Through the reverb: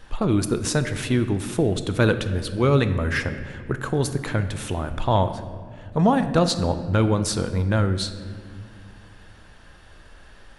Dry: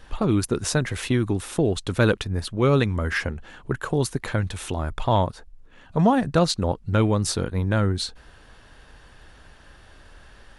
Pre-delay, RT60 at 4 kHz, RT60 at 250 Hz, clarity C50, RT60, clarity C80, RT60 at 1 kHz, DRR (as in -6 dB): 5 ms, 1.3 s, 3.1 s, 10.5 dB, 2.0 s, 12.0 dB, 1.7 s, 9.0 dB